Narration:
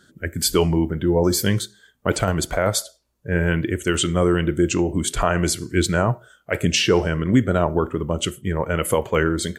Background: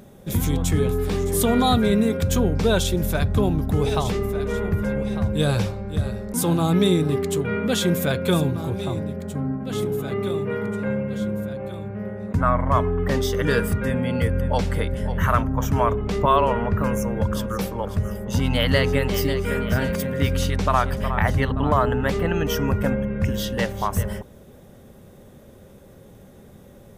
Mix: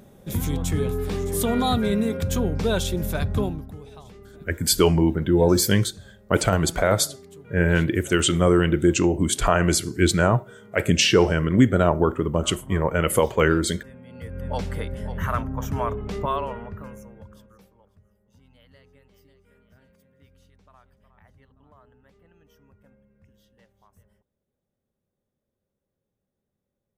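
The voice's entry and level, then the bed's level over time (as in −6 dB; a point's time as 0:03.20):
4.25 s, +0.5 dB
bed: 0:03.41 −3.5 dB
0:03.84 −22 dB
0:14.06 −22 dB
0:14.52 −6 dB
0:16.19 −6 dB
0:18.08 −36 dB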